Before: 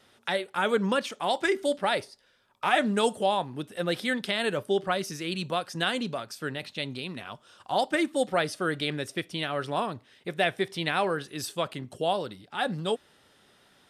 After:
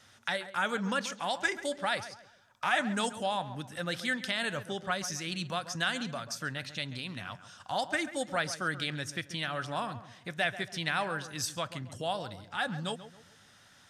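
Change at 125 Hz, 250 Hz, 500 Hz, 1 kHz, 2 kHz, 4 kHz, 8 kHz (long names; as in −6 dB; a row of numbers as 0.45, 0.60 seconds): −2.5, −6.5, −9.0, −5.0, −1.5, −3.0, +2.0 decibels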